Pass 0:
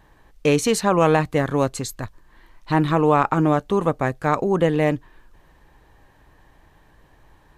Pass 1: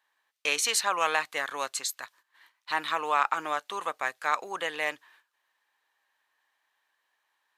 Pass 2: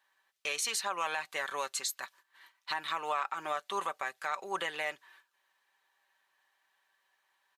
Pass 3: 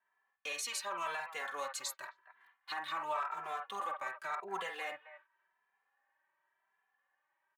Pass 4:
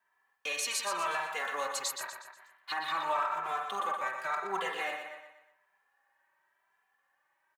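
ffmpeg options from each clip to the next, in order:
-af "highpass=1.3k,agate=range=-13dB:threshold=-58dB:ratio=16:detection=peak,equalizer=f=3.7k:t=o:w=0.77:g=2"
-af "aecho=1:1:5.2:0.5,alimiter=limit=-22dB:level=0:latency=1:release=281"
-filter_complex "[0:a]acrossover=split=410|440|2300[a][b][c][d];[c]aecho=1:1:49.56|265.3:0.891|0.282[e];[d]aeval=exprs='sgn(val(0))*max(abs(val(0))-0.00141,0)':c=same[f];[a][b][e][f]amix=inputs=4:normalize=0,asplit=2[g][h];[h]adelay=2.6,afreqshift=0.91[i];[g][i]amix=inputs=2:normalize=1,volume=-2.5dB"
-af "aecho=1:1:121|242|363|484|605:0.447|0.192|0.0826|0.0355|0.0153,volume=5dB"

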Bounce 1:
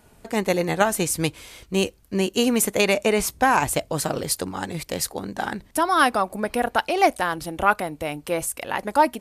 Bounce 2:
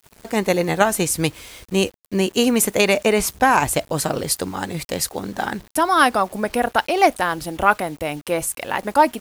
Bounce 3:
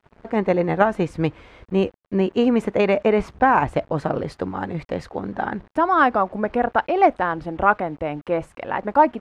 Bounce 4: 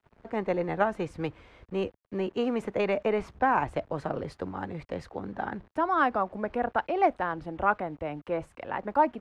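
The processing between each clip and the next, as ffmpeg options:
-af "acrusher=bits=7:mix=0:aa=0.000001,volume=3dB"
-af "lowpass=1.6k"
-filter_complex "[0:a]acrossover=split=270|690[a][b][c];[a]asoftclip=type=hard:threshold=-29.5dB[d];[d][b][c]amix=inputs=3:normalize=0,equalizer=f=80:w=1.5:g=2.5,volume=-8dB"

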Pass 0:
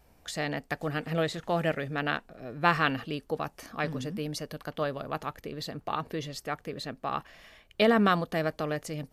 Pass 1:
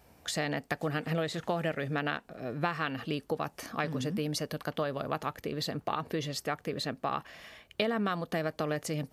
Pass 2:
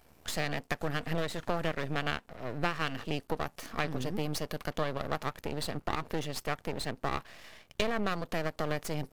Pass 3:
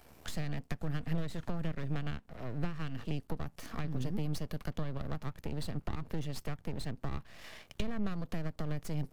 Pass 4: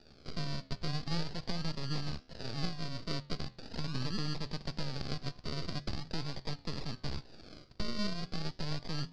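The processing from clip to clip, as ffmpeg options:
-af "acompressor=threshold=-31dB:ratio=8,highpass=72,volume=3.5dB"
-af "aeval=exprs='max(val(0),0)':c=same,volume=2.5dB"
-filter_complex "[0:a]acrossover=split=230[a][b];[b]acompressor=threshold=-47dB:ratio=5[c];[a][c]amix=inputs=2:normalize=0,volume=3dB"
-af "acrusher=samples=41:mix=1:aa=0.000001:lfo=1:lforange=24.6:lforate=0.41,lowpass=f=4.7k:t=q:w=8.5,flanger=delay=9.1:depth=8.8:regen=-86:speed=0.33:shape=triangular,volume=3dB"

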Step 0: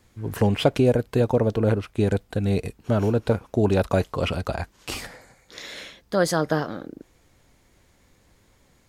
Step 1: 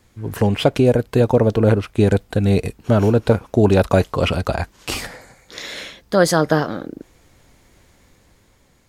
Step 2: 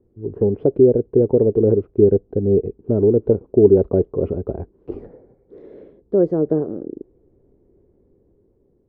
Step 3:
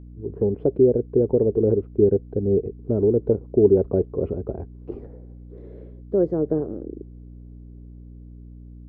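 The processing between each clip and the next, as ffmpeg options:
-af "dynaudnorm=f=170:g=11:m=4dB,volume=3dB"
-af "lowpass=f=400:t=q:w=4.9,volume=-6.5dB"
-af "aeval=exprs='val(0)+0.0158*(sin(2*PI*60*n/s)+sin(2*PI*2*60*n/s)/2+sin(2*PI*3*60*n/s)/3+sin(2*PI*4*60*n/s)/4+sin(2*PI*5*60*n/s)/5)':c=same,volume=-4dB"

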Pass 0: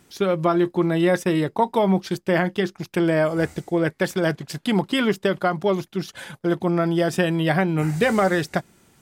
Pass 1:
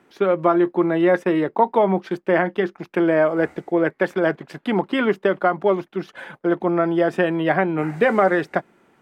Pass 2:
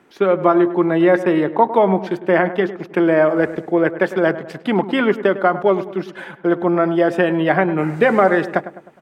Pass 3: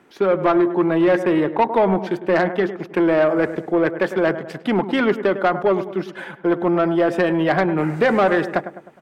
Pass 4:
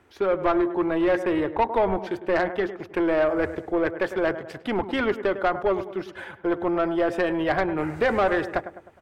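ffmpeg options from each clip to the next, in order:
-filter_complex "[0:a]acrossover=split=220 2500:gain=0.141 1 0.1[a][b][c];[a][b][c]amix=inputs=3:normalize=0,volume=3.5dB"
-filter_complex "[0:a]asplit=2[a][b];[b]adelay=103,lowpass=f=1.8k:p=1,volume=-13dB,asplit=2[c][d];[d]adelay=103,lowpass=f=1.8k:p=1,volume=0.5,asplit=2[e][f];[f]adelay=103,lowpass=f=1.8k:p=1,volume=0.5,asplit=2[g][h];[h]adelay=103,lowpass=f=1.8k:p=1,volume=0.5,asplit=2[i][j];[j]adelay=103,lowpass=f=1.8k:p=1,volume=0.5[k];[a][c][e][g][i][k]amix=inputs=6:normalize=0,volume=3dB"
-af "asoftclip=type=tanh:threshold=-9.5dB"
-af "lowshelf=f=120:t=q:w=3:g=11,volume=-4.5dB"

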